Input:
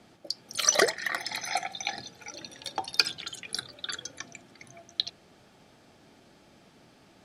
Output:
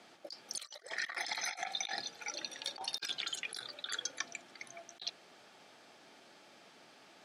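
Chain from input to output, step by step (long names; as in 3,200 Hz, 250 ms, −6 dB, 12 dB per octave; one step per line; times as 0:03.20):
meter weighting curve A
compressor whose output falls as the input rises −36 dBFS, ratio −0.5
level −4.5 dB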